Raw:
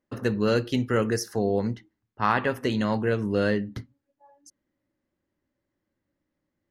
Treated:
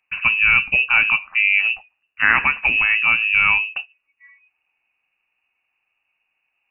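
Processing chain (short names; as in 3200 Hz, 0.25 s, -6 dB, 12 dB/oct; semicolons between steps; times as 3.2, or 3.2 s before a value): inverted band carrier 2800 Hz; gain +7.5 dB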